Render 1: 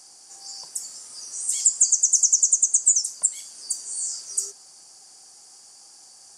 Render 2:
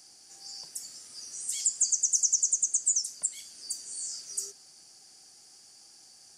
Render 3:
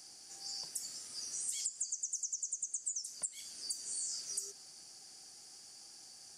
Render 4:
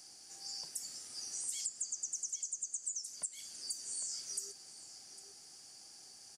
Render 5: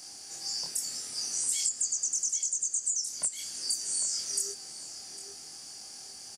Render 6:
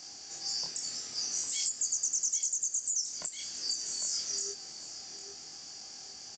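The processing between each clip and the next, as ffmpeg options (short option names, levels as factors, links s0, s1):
-af "equalizer=f=500:t=o:w=1:g=-4,equalizer=f=1000:t=o:w=1:g=-10,equalizer=f=8000:t=o:w=1:g=-9"
-af "acompressor=threshold=0.0178:ratio=16"
-filter_complex "[0:a]asplit=2[s0][s1];[s1]adelay=804,lowpass=f=2900:p=1,volume=0.398,asplit=2[s2][s3];[s3]adelay=804,lowpass=f=2900:p=1,volume=0.29,asplit=2[s4][s5];[s5]adelay=804,lowpass=f=2900:p=1,volume=0.29[s6];[s0][s2][s4][s6]amix=inputs=4:normalize=0,volume=0.891"
-filter_complex "[0:a]asplit=2[s0][s1];[s1]adelay=25,volume=0.794[s2];[s0][s2]amix=inputs=2:normalize=0,volume=2.51"
-af "aresample=16000,aresample=44100"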